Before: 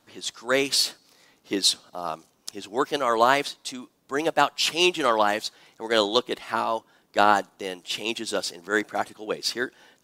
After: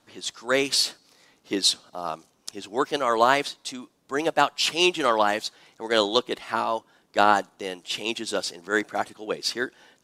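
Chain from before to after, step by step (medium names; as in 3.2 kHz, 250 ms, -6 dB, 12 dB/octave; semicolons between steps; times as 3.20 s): low-pass 12 kHz 12 dB/octave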